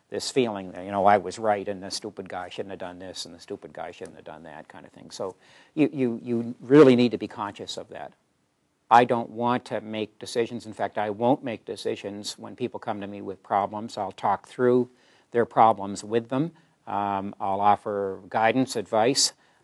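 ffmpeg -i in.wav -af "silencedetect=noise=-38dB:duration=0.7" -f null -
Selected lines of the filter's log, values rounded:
silence_start: 8.07
silence_end: 8.91 | silence_duration: 0.84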